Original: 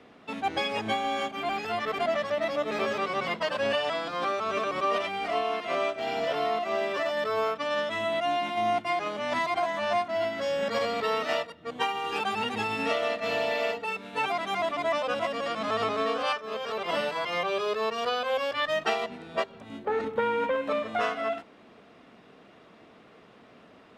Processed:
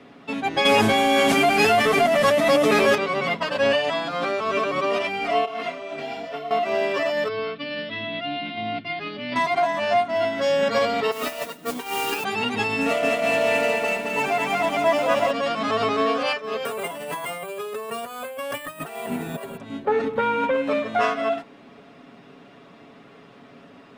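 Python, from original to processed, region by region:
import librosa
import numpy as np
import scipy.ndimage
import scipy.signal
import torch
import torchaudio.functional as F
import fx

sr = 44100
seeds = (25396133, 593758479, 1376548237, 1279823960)

y = fx.chain(x, sr, fx.delta_mod(bps=64000, step_db=-40.0),
    fx.clip_hard(threshold_db=-18.0),
    fx.env_flatten(amount_pct=100), at=(0.65, 2.95))
y = fx.chain(y, sr, fx.over_compress(threshold_db=-34.0, ratio=-1.0),
    fx.detune_double(cents=22), at=(5.45, 6.51))
y = fx.chain(y, sr, fx.cheby1_lowpass(hz=4700.0, order=5),
    fx.peak_eq(hz=850.0, db=-13.0, octaves=1.5), at=(7.28, 9.36))
y = fx.chain(y, sr, fx.highpass(hz=180.0, slope=24),
    fx.over_compress(threshold_db=-32.0, ratio=-0.5),
    fx.mod_noise(seeds[0], snr_db=10), at=(11.11, 12.24))
y = fx.chain(y, sr, fx.median_filter(points=9),
    fx.echo_crushed(ms=219, feedback_pct=55, bits=9, wet_db=-3), at=(12.81, 15.31))
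y = fx.chain(y, sr, fx.over_compress(threshold_db=-37.0, ratio=-1.0),
    fx.high_shelf(hz=4400.0, db=-8.5),
    fx.resample_bad(factor=4, down='none', up='hold'), at=(16.65, 19.57))
y = fx.peak_eq(y, sr, hz=210.0, db=7.0, octaves=0.5)
y = y + 0.59 * np.pad(y, (int(7.2 * sr / 1000.0), 0))[:len(y)]
y = y * librosa.db_to_amplitude(4.0)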